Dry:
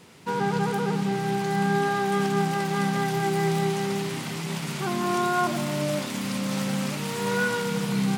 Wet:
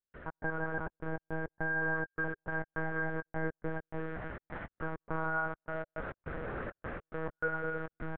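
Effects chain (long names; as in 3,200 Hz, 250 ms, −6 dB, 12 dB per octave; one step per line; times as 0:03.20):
linear delta modulator 64 kbit/s, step −38 dBFS
low-pass with resonance 1,600 Hz, resonance Q 5.8
low-shelf EQ 170 Hz −9.5 dB
mains-hum notches 60/120/180/240/300/360/420/480 Hz
repeating echo 267 ms, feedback 58%, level −11 dB
gate pattern ".x.xxx.x" 103 BPM −60 dB
parametric band 420 Hz +14 dB 1.7 octaves
downward compressor 1.5 to 1, threshold −42 dBFS, peak gain reduction 12 dB
one-pitch LPC vocoder at 8 kHz 160 Hz
level −8.5 dB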